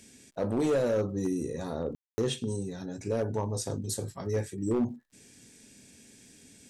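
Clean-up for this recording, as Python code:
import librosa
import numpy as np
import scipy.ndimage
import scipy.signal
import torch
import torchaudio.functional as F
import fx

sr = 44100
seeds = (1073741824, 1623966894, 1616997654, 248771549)

y = fx.fix_declip(x, sr, threshold_db=-22.0)
y = fx.fix_declick_ar(y, sr, threshold=6.5)
y = fx.fix_ambience(y, sr, seeds[0], print_start_s=4.99, print_end_s=5.49, start_s=1.95, end_s=2.18)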